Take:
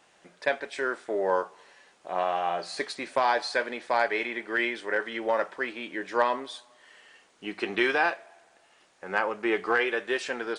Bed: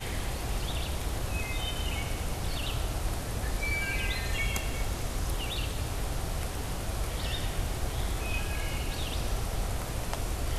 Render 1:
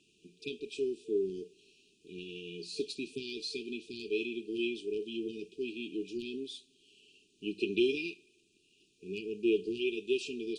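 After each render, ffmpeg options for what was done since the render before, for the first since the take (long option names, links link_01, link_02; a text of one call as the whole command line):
ffmpeg -i in.wav -af "afftfilt=real='re*(1-between(b*sr/4096,450,2400))':imag='im*(1-between(b*sr/4096,450,2400))':win_size=4096:overlap=0.75,highshelf=frequency=3300:gain=-7" out.wav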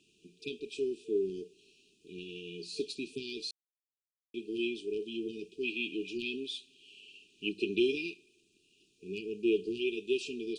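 ffmpeg -i in.wav -filter_complex "[0:a]asettb=1/sr,asplit=3[link_01][link_02][link_03];[link_01]atrim=end=0.914[link_04];[link_02]atrim=start=0.91:end=1.42,asetpts=PTS-STARTPTS,afade=type=in:duration=0.004:curve=qsin,afade=type=out:start_time=0.506:duration=0.004:curve=qsin,equalizer=frequency=1600:width_type=o:width=0.77:gain=13.5[link_05];[link_03]atrim=start=1.416[link_06];[link_04][link_05]acrossfade=duration=0.004:curve1=hsin:curve2=qsin[link_07];[link_07][link_06]acrossfade=duration=0.004:curve1=qsin:curve2=hsin,asettb=1/sr,asplit=3[link_08][link_09][link_10];[link_08]atrim=end=5.634[link_11];[link_09]atrim=start=5.63:end=7.49,asetpts=PTS-STARTPTS,afade=type=in:duration=0.004:curve=qsin,afade=type=out:start_time=1.856:duration=0.004:curve=qsin,equalizer=frequency=2300:width_type=o:width=1.3:gain=11[link_12];[link_10]atrim=start=7.486[link_13];[link_11][link_12]acrossfade=duration=0.004:curve1=hsin:curve2=qsin[link_14];[link_14][link_13]acrossfade=duration=0.004:curve1=qsin:curve2=hsin,asplit=3[link_15][link_16][link_17];[link_15]atrim=end=3.51,asetpts=PTS-STARTPTS,afade=type=out:start_time=3.506:duration=0.004:curve=hsin[link_18];[link_16]atrim=start=3.51:end=4.34,asetpts=PTS-STARTPTS,volume=0[link_19];[link_17]atrim=start=4.34,asetpts=PTS-STARTPTS,afade=type=in:duration=0.004:curve=hsin[link_20];[link_18][link_19][link_20]concat=n=3:v=0:a=1" out.wav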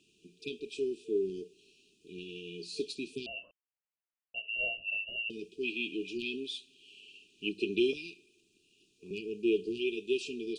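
ffmpeg -i in.wav -filter_complex "[0:a]asettb=1/sr,asplit=3[link_01][link_02][link_03];[link_01]atrim=end=3.264[link_04];[link_02]atrim=start=3.26:end=5.3,asetpts=PTS-STARTPTS,afade=type=in:duration=0.004:curve=qsin,afade=type=out:start_time=2.036:duration=0.004:curve=qsin,lowpass=frequency=2600:width_type=q:width=0.5098,lowpass=frequency=2600:width_type=q:width=0.6013,lowpass=frequency=2600:width_type=q:width=0.9,lowpass=frequency=2600:width_type=q:width=2.563,afreqshift=-3100[link_05];[link_03]atrim=start=5.296[link_06];[link_04][link_05]acrossfade=duration=0.004:curve1=hsin:curve2=qsin[link_07];[link_07][link_06]acrossfade=duration=0.004:curve1=qsin:curve2=hsin,asettb=1/sr,asplit=3[link_08][link_09][link_10];[link_08]atrim=end=7.934[link_11];[link_09]atrim=start=7.93:end=9.11,asetpts=PTS-STARTPTS,afade=type=in:duration=0.004:curve=qsin,afade=type=out:start_time=1.176:duration=0.004:curve=qsin,acrossover=split=170|3000[link_12][link_13][link_14];[link_13]acompressor=threshold=-47dB:ratio=6:attack=3.2:release=140:knee=2.83:detection=peak[link_15];[link_12][link_15][link_14]amix=inputs=3:normalize=0[link_16];[link_10]atrim=start=9.106[link_17];[link_11][link_16]acrossfade=duration=0.004:curve1=hsin:curve2=qsin[link_18];[link_18][link_17]acrossfade=duration=0.004:curve1=qsin:curve2=hsin" out.wav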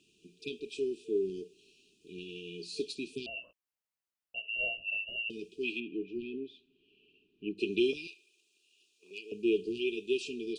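ffmpeg -i in.wav -filter_complex "[0:a]asettb=1/sr,asplit=3[link_01][link_02][link_03];[link_01]atrim=end=3.264[link_04];[link_02]atrim=start=3.26:end=4.38,asetpts=PTS-STARTPTS,afade=type=in:duration=0.004:curve=qsin,afade=type=out:start_time=1.116:duration=0.004:curve=qsin,asplit=2[link_05][link_06];[link_06]adelay=18,volume=-11dB[link_07];[link_05][link_07]amix=inputs=2:normalize=0,atrim=end_sample=49392[link_08];[link_03]atrim=start=4.376[link_09];[link_04][link_08]acrossfade=duration=0.004:curve1=hsin:curve2=qsin[link_10];[link_10][link_09]acrossfade=duration=0.004:curve1=qsin:curve2=hsin,asplit=3[link_11][link_12][link_13];[link_11]afade=type=out:start_time=5.79:duration=0.02[link_14];[link_12]lowpass=1300,afade=type=in:start_time=5.79:duration=0.02,afade=type=out:start_time=7.57:duration=0.02[link_15];[link_13]afade=type=in:start_time=7.57:duration=0.02[link_16];[link_14][link_15][link_16]amix=inputs=3:normalize=0,asettb=1/sr,asplit=3[link_17][link_18][link_19];[link_17]atrim=end=8.074[link_20];[link_18]atrim=start=8.07:end=9.32,asetpts=PTS-STARTPTS,afade=type=in:duration=0.004:curve=qsin,afade=type=out:start_time=1.246:duration=0.004:curve=qsin,highpass=680[link_21];[link_19]atrim=start=9.316[link_22];[link_20][link_21]acrossfade=duration=0.004:curve1=hsin:curve2=qsin[link_23];[link_23][link_22]acrossfade=duration=0.004:curve1=qsin:curve2=hsin" out.wav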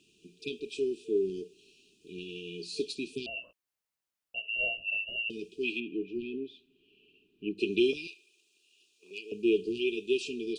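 ffmpeg -i in.wav -af "volume=2.5dB" out.wav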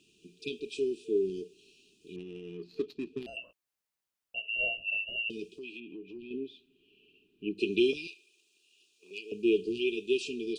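ffmpeg -i in.wav -filter_complex "[0:a]asettb=1/sr,asplit=3[link_01][link_02][link_03];[link_01]atrim=end=2.164[link_04];[link_02]atrim=start=2.16:end=3.37,asetpts=PTS-STARTPTS,afade=type=in:duration=0.004:curve=qsin,afade=type=out:start_time=1.206:duration=0.004:curve=qsin,adynamicsmooth=sensitivity=3.5:basefreq=1100[link_05];[link_03]atrim=start=3.366[link_06];[link_04][link_05]acrossfade=duration=0.004:curve1=hsin:curve2=qsin[link_07];[link_07][link_06]acrossfade=duration=0.004:curve1=qsin:curve2=hsin,asettb=1/sr,asplit=3[link_08][link_09][link_10];[link_08]atrim=end=5.544[link_11];[link_09]atrim=start=5.54:end=6.31,asetpts=PTS-STARTPTS,afade=type=in:duration=0.004:curve=qsin,afade=type=out:start_time=0.766:duration=0.004:curve=qsin,acompressor=threshold=-44dB:ratio=3:attack=3.2:release=140:knee=1:detection=peak[link_12];[link_10]atrim=start=6.306[link_13];[link_11][link_12]acrossfade=duration=0.004:curve1=hsin:curve2=qsin[link_14];[link_14][link_13]acrossfade=duration=0.004:curve1=qsin:curve2=hsin" out.wav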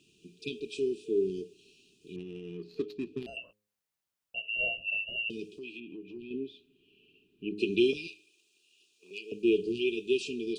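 ffmpeg -i in.wav -af "equalizer=frequency=120:width_type=o:width=1.5:gain=5,bandreject=frequency=104.4:width_type=h:width=4,bandreject=frequency=208.8:width_type=h:width=4,bandreject=frequency=313.2:width_type=h:width=4,bandreject=frequency=417.6:width_type=h:width=4,bandreject=frequency=522:width_type=h:width=4" out.wav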